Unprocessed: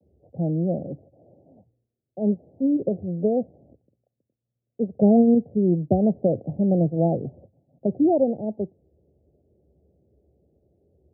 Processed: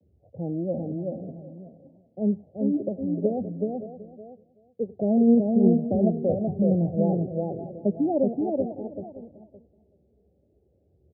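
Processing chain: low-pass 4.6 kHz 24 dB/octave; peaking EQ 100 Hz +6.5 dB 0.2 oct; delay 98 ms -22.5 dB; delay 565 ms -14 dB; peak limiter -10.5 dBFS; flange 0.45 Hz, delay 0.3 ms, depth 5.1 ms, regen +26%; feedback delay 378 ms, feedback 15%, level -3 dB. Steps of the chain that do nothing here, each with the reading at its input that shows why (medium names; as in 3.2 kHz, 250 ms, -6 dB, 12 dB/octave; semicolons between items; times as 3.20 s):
low-pass 4.6 kHz: input has nothing above 850 Hz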